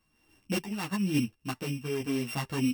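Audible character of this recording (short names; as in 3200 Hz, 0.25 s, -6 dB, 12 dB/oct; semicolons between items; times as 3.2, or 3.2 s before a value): a buzz of ramps at a fixed pitch in blocks of 16 samples; random-step tremolo; a shimmering, thickened sound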